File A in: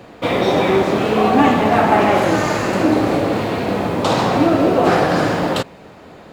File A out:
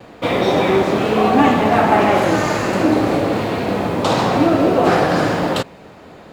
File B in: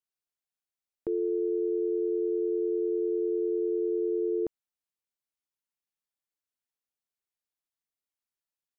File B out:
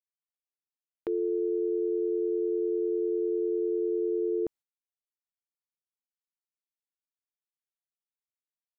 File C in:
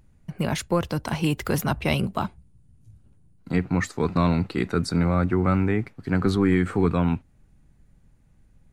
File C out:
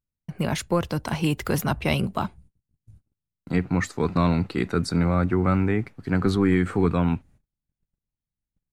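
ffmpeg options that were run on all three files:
-af "agate=range=0.0251:threshold=0.00355:ratio=16:detection=peak"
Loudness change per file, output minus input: 0.0 LU, 0.0 LU, 0.0 LU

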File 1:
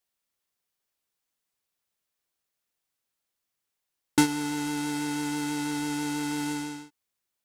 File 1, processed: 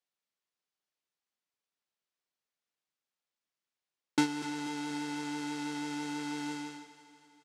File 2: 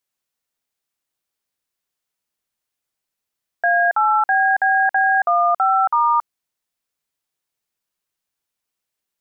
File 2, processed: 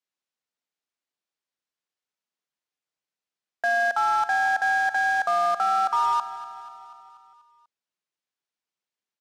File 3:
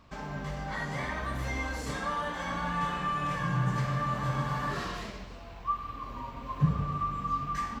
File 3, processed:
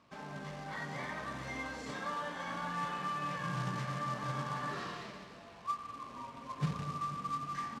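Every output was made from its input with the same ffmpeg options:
-filter_complex "[0:a]acrusher=bits=3:mode=log:mix=0:aa=0.000001,highpass=150,lowpass=6200,asplit=2[s0][s1];[s1]aecho=0:1:243|486|729|972|1215|1458:0.188|0.111|0.0656|0.0387|0.0228|0.0135[s2];[s0][s2]amix=inputs=2:normalize=0,volume=0.501"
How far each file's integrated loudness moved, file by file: -6.5 LU, -6.0 LU, -6.5 LU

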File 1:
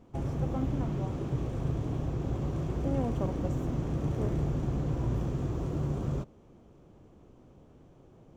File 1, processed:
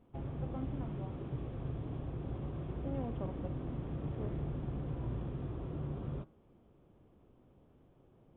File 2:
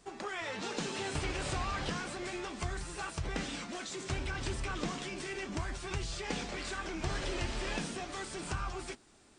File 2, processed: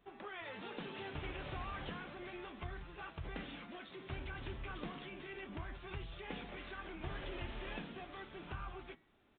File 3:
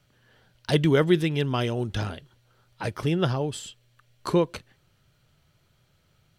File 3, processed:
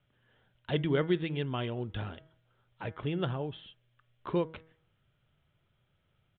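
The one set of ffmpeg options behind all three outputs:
-af "bandreject=f=160.2:t=h:w=4,bandreject=f=320.4:t=h:w=4,bandreject=f=480.6:t=h:w=4,bandreject=f=640.8:t=h:w=4,bandreject=f=801:t=h:w=4,bandreject=f=961.2:t=h:w=4,bandreject=f=1121.4:t=h:w=4,bandreject=f=1281.6:t=h:w=4,bandreject=f=1441.8:t=h:w=4,bandreject=f=1602:t=h:w=4,bandreject=f=1762.2:t=h:w=4,bandreject=f=1922.4:t=h:w=4,bandreject=f=2082.6:t=h:w=4,bandreject=f=2242.8:t=h:w=4,aresample=8000,aresample=44100,volume=0.398"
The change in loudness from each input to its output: -8.0 LU, -9.0 LU, -8.5 LU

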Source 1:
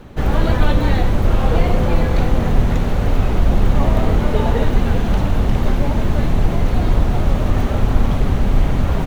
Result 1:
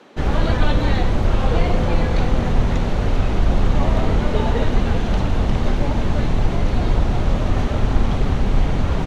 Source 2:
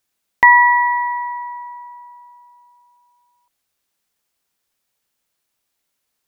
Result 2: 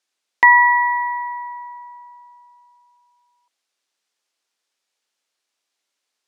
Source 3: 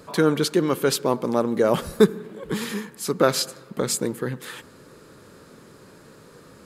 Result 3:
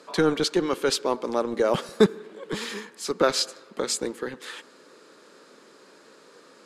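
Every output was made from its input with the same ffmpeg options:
-filter_complex "[0:a]lowpass=5700,highshelf=f=3900:g=8,acrossover=split=240[s0][s1];[s0]acrusher=bits=3:mix=0:aa=0.5[s2];[s2][s1]amix=inputs=2:normalize=0,volume=0.75"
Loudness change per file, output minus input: -2.0 LU, -1.5 LU, -2.5 LU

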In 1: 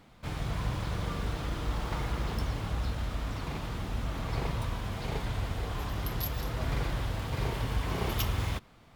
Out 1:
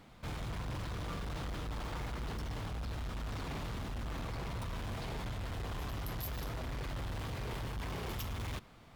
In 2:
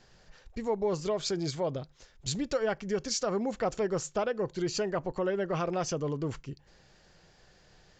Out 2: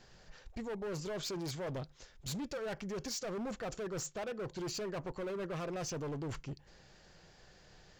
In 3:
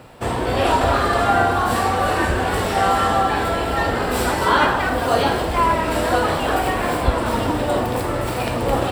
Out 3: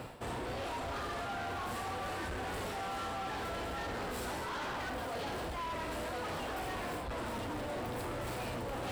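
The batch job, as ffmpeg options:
-af "areverse,acompressor=threshold=0.0282:ratio=12,areverse,asoftclip=type=hard:threshold=0.015"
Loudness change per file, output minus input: -6.5 LU, -8.5 LU, -19.5 LU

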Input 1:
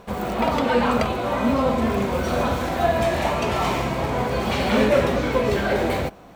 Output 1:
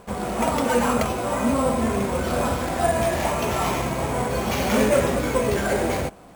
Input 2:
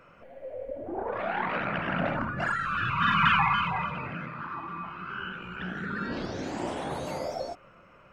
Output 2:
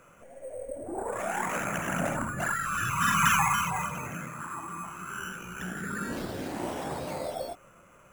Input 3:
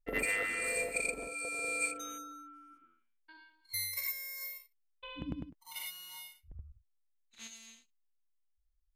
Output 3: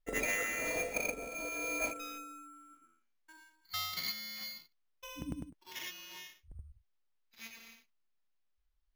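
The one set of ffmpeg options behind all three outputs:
-af "acrusher=samples=5:mix=1:aa=0.000001,volume=0.891"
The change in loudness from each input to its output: -1.0 LU, -1.0 LU, -1.5 LU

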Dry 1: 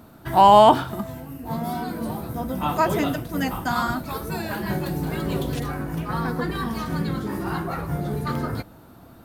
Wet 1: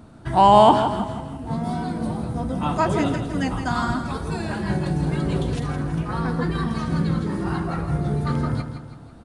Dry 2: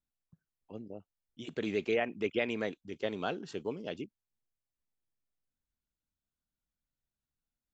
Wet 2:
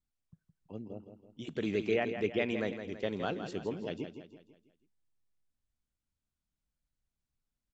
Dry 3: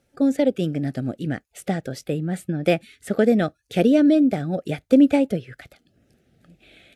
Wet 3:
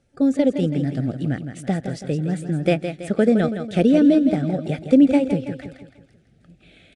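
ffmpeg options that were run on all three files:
-filter_complex "[0:a]lowshelf=f=200:g=7.5,asplit=2[s0][s1];[s1]aecho=0:1:164|328|492|656|820:0.355|0.16|0.0718|0.0323|0.0145[s2];[s0][s2]amix=inputs=2:normalize=0,aresample=22050,aresample=44100,volume=0.841"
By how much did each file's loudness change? +0.5 LU, +0.5 LU, +1.5 LU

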